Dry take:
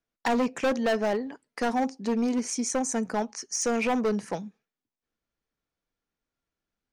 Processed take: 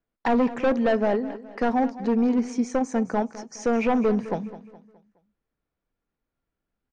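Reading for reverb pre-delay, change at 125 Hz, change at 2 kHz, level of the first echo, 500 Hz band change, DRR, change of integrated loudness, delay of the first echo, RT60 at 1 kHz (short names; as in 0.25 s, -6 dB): none, +5.0 dB, 0.0 dB, -15.5 dB, +4.0 dB, none, +3.5 dB, 0.209 s, none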